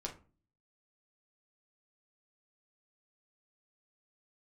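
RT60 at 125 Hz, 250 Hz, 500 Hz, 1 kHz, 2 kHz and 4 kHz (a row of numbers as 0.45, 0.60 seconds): 0.65, 0.60, 0.40, 0.35, 0.25, 0.20 seconds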